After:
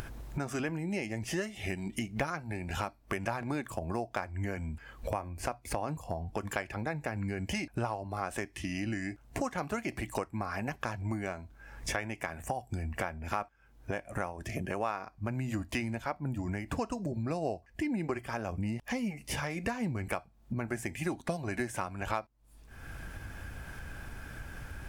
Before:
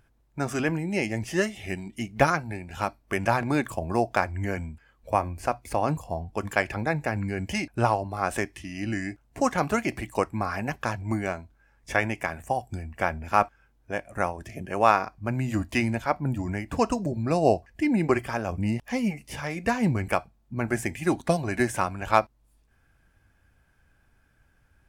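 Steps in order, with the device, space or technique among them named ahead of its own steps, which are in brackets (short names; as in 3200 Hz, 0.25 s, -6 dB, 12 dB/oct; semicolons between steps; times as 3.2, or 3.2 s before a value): upward and downward compression (upward compressor, threshold -25 dBFS; compressor 4:1, threshold -32 dBFS, peak gain reduction 16.5 dB)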